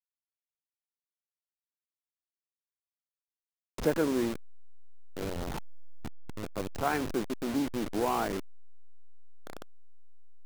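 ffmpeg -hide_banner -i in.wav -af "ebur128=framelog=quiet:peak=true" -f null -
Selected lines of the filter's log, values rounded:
Integrated loudness:
  I:         -32.7 LUFS
  Threshold: -43.9 LUFS
Loudness range:
  LRA:         3.0 LU
  Threshold: -55.3 LUFS
  LRA low:   -36.8 LUFS
  LRA high:  -33.9 LUFS
True peak:
  Peak:      -13.9 dBFS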